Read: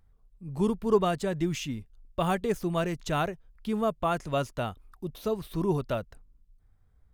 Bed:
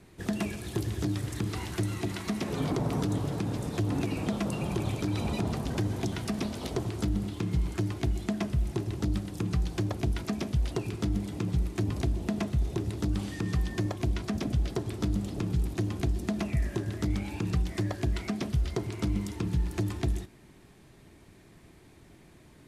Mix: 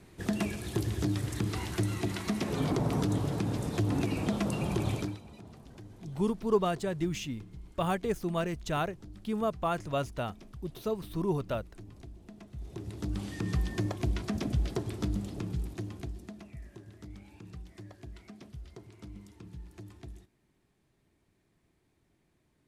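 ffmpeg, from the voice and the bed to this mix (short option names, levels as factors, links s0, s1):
-filter_complex "[0:a]adelay=5600,volume=0.708[s0];[1:a]volume=7.94,afade=t=out:st=4.96:d=0.23:silence=0.105925,afade=t=in:st=12.48:d=1.01:silence=0.125893,afade=t=out:st=14.81:d=1.61:silence=0.158489[s1];[s0][s1]amix=inputs=2:normalize=0"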